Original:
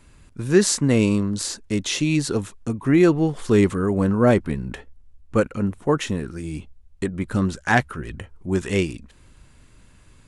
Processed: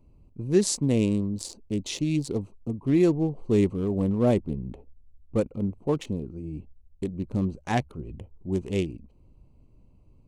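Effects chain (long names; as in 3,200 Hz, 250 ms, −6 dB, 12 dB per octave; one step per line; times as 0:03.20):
adaptive Wiener filter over 25 samples
parametric band 1,500 Hz −13 dB 0.82 octaves
0:03.23–0:05.43: one half of a high-frequency compander decoder only
level −4.5 dB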